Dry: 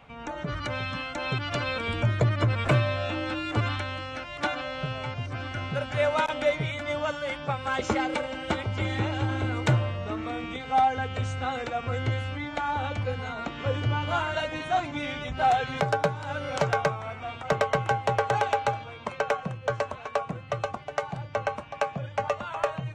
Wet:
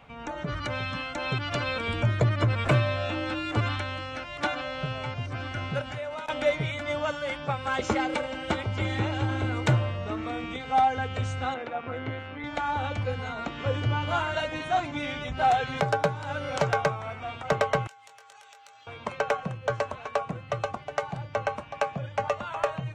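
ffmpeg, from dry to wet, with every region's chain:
-filter_complex "[0:a]asettb=1/sr,asplit=3[a][b][c];[a]atrim=end=5.814[d];[b]atrim=start=5.81:end=6.28,asetpts=PTS-STARTPTS,afade=t=in:d=0.004:c=qsin,afade=t=out:st=0.466:d=0.004:c=qsin,acompressor=threshold=-32dB:ratio=10:attack=3.2:release=140:knee=1:detection=peak,asplit=2[e][f];[f]adelay=24,volume=-11.5dB[g];[e][g]amix=inputs=2:normalize=0,atrim=end_sample=20727[h];[c]atrim=start=6.276[i];[d][h]acrossfade=d=0.004:c1=hsin:c2=qsin[j];[j][i]acrossfade=d=0.004:c1=qsin:c2=hsin,asettb=1/sr,asplit=3[k][l][m];[k]atrim=end=11.544[n];[l]atrim=start=11.54:end=12.44,asetpts=PTS-STARTPTS,afade=t=in:d=0.004:c=qsin,afade=t=out:st=0.896:d=0.004:c=qsin,tremolo=f=160:d=0.519,highpass=150,lowpass=2.7k[o];[m]atrim=start=12.436[p];[n][o]acrossfade=d=0.004:c1=hsin:c2=qsin[q];[q][p]acrossfade=d=0.004:c1=qsin:c2=hsin,asettb=1/sr,asplit=3[r][s][t];[r]atrim=end=17.874[u];[s]atrim=start=17.87:end=18.87,asetpts=PTS-STARTPTS,afade=t=in:d=0.004:c=qsin,afade=t=out:st=0.996:d=0.004:c=qsin,aderivative,asplit=2[v][w];[w]adelay=20,volume=-3.5dB[x];[v][x]amix=inputs=2:normalize=0,atrim=end_sample=44100,acompressor=threshold=-48dB:ratio=8:attack=3.2:release=140:knee=1:detection=peak[y];[t]atrim=start=18.866[z];[u][y]acrossfade=d=0.004:c1=hsin:c2=qsin[aa];[aa][z]acrossfade=d=0.004:c1=qsin:c2=hsin"

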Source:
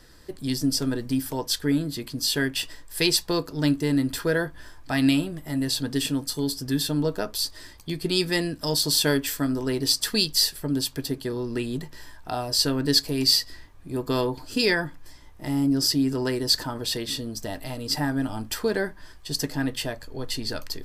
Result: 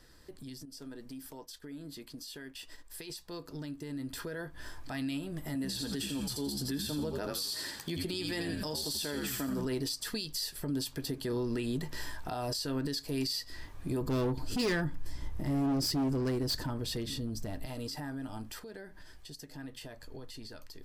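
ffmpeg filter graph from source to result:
-filter_complex "[0:a]asettb=1/sr,asplit=3[a][b][c];[a]atrim=end=0.654[d];[b]atrim=start=0.65:end=3.1,asetpts=PTS-STARTPTS,afade=t=in:d=0.004:c=qsin,afade=t=out:st=2.446:d=0.004:c=qsin,equalizer=f=110:t=o:w=0.67:g=-10.5,acompressor=threshold=-36dB:ratio=2:attack=3.2:release=140:knee=1:detection=peak,agate=range=-33dB:threshold=-38dB:ratio=3:release=100:detection=peak[e];[c]atrim=start=3.096[f];[d][e]acrossfade=d=0.004:c1=hsin:c2=qsin[g];[g][f]acrossfade=d=0.004:c1=qsin:c2=hsin,asettb=1/sr,asplit=3[h][i][j];[h]atrim=end=5.554[k];[i]atrim=start=5.55:end=9.65,asetpts=PTS-STARTPTS,afade=t=in:d=0.004:c=qsin,afade=t=out:st=4.096:d=0.004:c=qsin,highpass=160,asplit=5[l][m][n][o][p];[m]adelay=82,afreqshift=-74,volume=-6.5dB[q];[n]adelay=164,afreqshift=-148,volume=-14.9dB[r];[o]adelay=246,afreqshift=-222,volume=-23.3dB[s];[p]adelay=328,afreqshift=-296,volume=-31.7dB[t];[l][q][r][s][t]amix=inputs=5:normalize=0,atrim=end_sample=180810[u];[j]atrim=start=9.646[v];[k][u]acrossfade=d=0.004:c1=hsin:c2=qsin[w];[w][v]acrossfade=d=0.004:c1=qsin:c2=hsin,asettb=1/sr,asplit=3[x][y][z];[x]atrim=end=14.014[aa];[y]atrim=start=14.01:end=17.66,asetpts=PTS-STARTPTS,afade=t=in:d=0.004:c=qsin,afade=t=out:st=3.646:d=0.004:c=qsin,lowshelf=f=280:g=12,volume=18dB,asoftclip=hard,volume=-18dB[ab];[z]atrim=start=17.656[ac];[aa][ab]acrossfade=d=0.004:c1=hsin:c2=qsin[ad];[ad][ac]acrossfade=d=0.004:c1=qsin:c2=hsin,asettb=1/sr,asplit=3[ae][af][ag];[ae]atrim=end=18.594[ah];[af]atrim=start=18.59:end=19.56,asetpts=PTS-STARTPTS,afade=t=in:d=0.004:c=qsin,afade=t=out:st=0.966:d=0.004:c=qsin,equalizer=f=1.1k:w=5.4:g=-7.5,acompressor=threshold=-42dB:ratio=4:attack=3.2:release=140:knee=1:detection=peak[ai];[ag]atrim=start=19.556[aj];[ah][ai]acrossfade=d=0.004:c1=hsin:c2=qsin[ak];[ak][aj]acrossfade=d=0.004:c1=qsin:c2=hsin,acompressor=threshold=-34dB:ratio=6,alimiter=level_in=6.5dB:limit=-24dB:level=0:latency=1:release=39,volume=-6.5dB,dynaudnorm=f=820:g=11:m=11.5dB,volume=-7dB"

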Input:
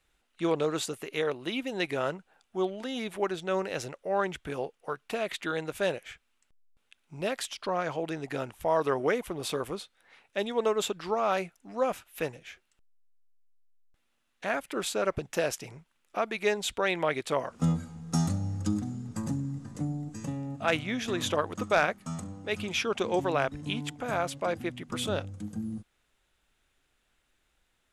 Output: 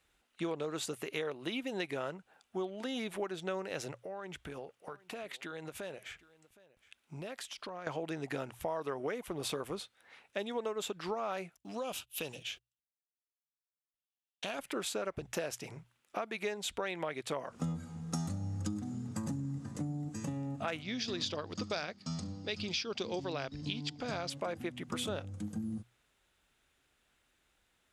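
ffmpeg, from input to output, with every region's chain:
-filter_complex "[0:a]asettb=1/sr,asplit=3[a][b][c];[a]atrim=end=3.914[d];[b]atrim=start=3.91:end=7.87,asetpts=PTS-STARTPTS,afade=t=in:d=0.004:c=qsin,afade=t=out:st=3.956:d=0.004:c=qsin,acompressor=threshold=-41dB:ratio=5:attack=3.2:release=140:knee=1:detection=peak,aecho=1:1:765:0.0891,atrim=end_sample=174636[e];[c]atrim=start=7.866[f];[d][e]acrossfade=d=0.004:c1=hsin:c2=qsin[g];[g][f]acrossfade=d=0.004:c1=qsin:c2=hsin,asettb=1/sr,asplit=3[h][i][j];[h]atrim=end=11.574[k];[i]atrim=start=11.57:end=14.59,asetpts=PTS-STARTPTS,afade=t=in:d=0.004:c=qsin,afade=t=out:st=3.016:d=0.004:c=qsin,agate=range=-32dB:threshold=-58dB:ratio=16:release=100:detection=peak,highshelf=f=2.4k:t=q:w=3:g=6.5,acompressor=threshold=-34dB:ratio=3:attack=3.2:release=140:knee=1:detection=peak[l];[j]atrim=start=14.586[m];[k][l]acrossfade=d=0.004:c1=hsin:c2=qsin[n];[n][m]acrossfade=d=0.004:c1=qsin:c2=hsin,asettb=1/sr,asplit=3[o][p][q];[o]atrim=end=20.824[r];[p]atrim=start=20.82:end=24.3,asetpts=PTS-STARTPTS,afade=t=in:d=0.004:c=qsin,afade=t=out:st=3.476:d=0.004:c=qsin,lowpass=f=4.8k:t=q:w=6.8,equalizer=f=1.1k:w=0.55:g=-6.5[s];[q]atrim=start=24.296[t];[r][s]acrossfade=d=0.004:c1=hsin:c2=qsin[u];[u][t]acrossfade=d=0.004:c1=qsin:c2=hsin,highpass=43,bandreject=f=60:t=h:w=6,bandreject=f=120:t=h:w=6,acompressor=threshold=-34dB:ratio=5"

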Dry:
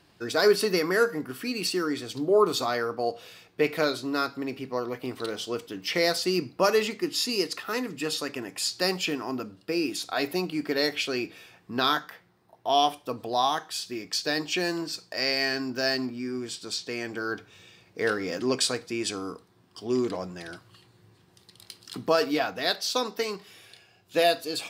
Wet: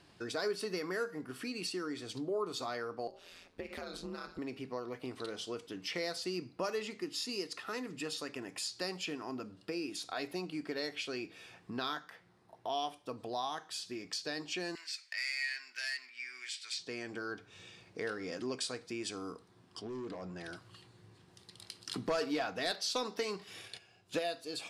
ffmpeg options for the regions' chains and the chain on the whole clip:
-filter_complex "[0:a]asettb=1/sr,asplit=3[a][b][c];[a]atrim=end=3.074[d];[b]atrim=start=3.07:end=4.39,asetpts=PTS-STARTPTS,afade=t=in:d=0.004:c=qsin,afade=t=out:st=1.316:d=0.004:c=qsin,aeval=exprs='val(0)*sin(2*PI*86*n/s)':c=same,acompressor=threshold=-31dB:ratio=6:attack=3.2:release=140:knee=1:detection=peak[e];[c]atrim=start=4.386[f];[d][e]acrossfade=d=0.004:c1=hsin:c2=qsin[g];[g][f]acrossfade=d=0.004:c1=qsin:c2=hsin,asettb=1/sr,asplit=3[h][i][j];[h]atrim=end=14.754[k];[i]atrim=start=14.75:end=16.79,asetpts=PTS-STARTPTS,afade=t=in:d=0.004:c=qsin,afade=t=out:st=2.036:d=0.004:c=qsin,asoftclip=type=hard:threshold=-22.5dB,highpass=f=2.1k:t=q:w=4.4[l];[j]atrim=start=16.786[m];[k][l]acrossfade=d=0.004:c1=hsin:c2=qsin[n];[n][m]acrossfade=d=0.004:c1=qsin:c2=hsin,asettb=1/sr,asplit=3[o][p][q];[o]atrim=end=19.814[r];[p]atrim=start=19.81:end=20.44,asetpts=PTS-STARTPTS,afade=t=in:d=0.004:c=qsin,afade=t=out:st=0.626:d=0.004:c=qsin,lowpass=f=3k:p=1,acompressor=threshold=-33dB:ratio=2.5:attack=3.2:release=140:knee=1:detection=peak,asoftclip=type=hard:threshold=-32dB[s];[q]atrim=start=20.436[t];[r][s]acrossfade=d=0.004:c1=hsin:c2=qsin[u];[u][t]acrossfade=d=0.004:c1=qsin:c2=hsin,asettb=1/sr,asplit=3[v][w][x];[v]atrim=end=21.844[y];[w]atrim=start=21.84:end=24.19,asetpts=PTS-STARTPTS,afade=t=in:d=0.004:c=qsin,afade=t=out:st=2.346:d=0.004:c=qsin,aeval=exprs='0.299*sin(PI/2*1.58*val(0)/0.299)':c=same,agate=range=-11dB:threshold=-45dB:ratio=16:release=100:detection=peak[z];[x]atrim=start=24.186[aa];[y][z]acrossfade=d=0.004:c1=hsin:c2=qsin[ab];[ab][aa]acrossfade=d=0.004:c1=qsin:c2=hsin,lowpass=f=11k:w=0.5412,lowpass=f=11k:w=1.3066,acompressor=threshold=-42dB:ratio=2,volume=-1.5dB"

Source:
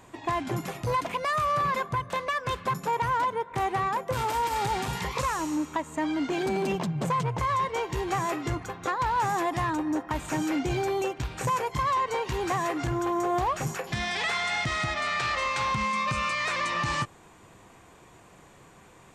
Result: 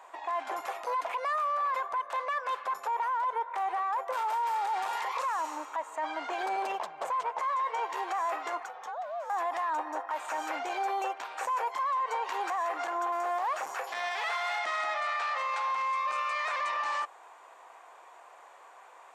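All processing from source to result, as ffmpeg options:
-filter_complex "[0:a]asettb=1/sr,asplit=3[a][b][c];[a]atrim=end=7.284[d];[b]atrim=start=7.28:end=7.79,asetpts=PTS-STARTPTS,afade=t=in:d=0.004:c=qsin,afade=t=out:st=0.506:d=0.004:c=qsin,lowpass=12k,asplit=2[e][f];[f]adelay=12,volume=-8dB[g];[e][g]amix=inputs=2:normalize=0,atrim=end_sample=22491[h];[c]atrim=start=7.786[i];[d][h]acrossfade=d=0.004:c1=hsin:c2=qsin[j];[j][i]acrossfade=d=0.004:c1=qsin:c2=hsin,asettb=1/sr,asplit=3[k][l][m];[k]atrim=end=8.674[n];[l]atrim=start=8.67:end=9.3,asetpts=PTS-STARTPTS,afade=t=in:d=0.004:c=qsin,afade=t=out:st=0.626:d=0.004:c=qsin,acompressor=threshold=-37dB:ratio=12:attack=3.2:release=140:knee=1:detection=peak,afreqshift=-290[o];[m]atrim=start=9.296[p];[n][o]acrossfade=d=0.004:c1=hsin:c2=qsin[q];[q][p]acrossfade=d=0.004:c1=qsin:c2=hsin,asettb=1/sr,asplit=3[r][s][t];[r]atrim=end=13.124[u];[s]atrim=start=13.12:end=14.59,asetpts=PTS-STARTPTS,afade=t=in:d=0.004:c=qsin,afade=t=out:st=1.466:d=0.004:c=qsin,bass=f=250:g=3,treble=f=4k:g=10,acrossover=split=3400[v][w];[w]acompressor=threshold=-42dB:ratio=4:attack=1:release=60[x];[v][x]amix=inputs=2:normalize=0,aeval=exprs='clip(val(0),-1,0.0224)':c=same[y];[t]atrim=start=14.586[z];[u][y]acrossfade=d=0.004:c1=hsin:c2=qsin[aa];[aa][z]acrossfade=d=0.004:c1=qsin:c2=hsin,highpass=f=740:w=0.5412,highpass=f=740:w=1.3066,tiltshelf=f=1.4k:g=10,alimiter=level_in=3dB:limit=-24dB:level=0:latency=1:release=18,volume=-3dB,volume=2.5dB"

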